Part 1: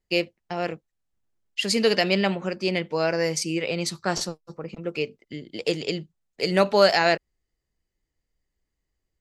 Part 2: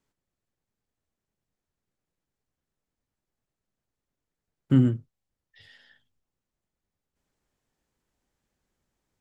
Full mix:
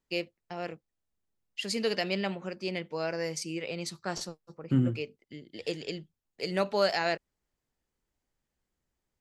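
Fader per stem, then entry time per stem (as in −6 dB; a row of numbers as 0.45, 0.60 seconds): −9.0, −6.0 decibels; 0.00, 0.00 seconds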